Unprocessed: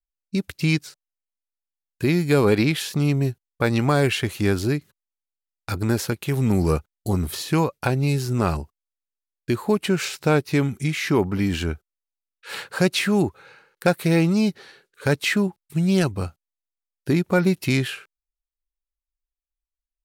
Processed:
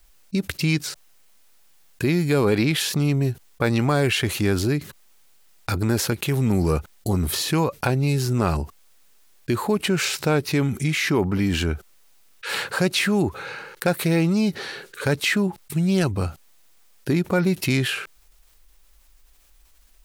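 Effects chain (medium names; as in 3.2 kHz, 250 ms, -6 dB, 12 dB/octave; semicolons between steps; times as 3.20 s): level flattener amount 50%; trim -3 dB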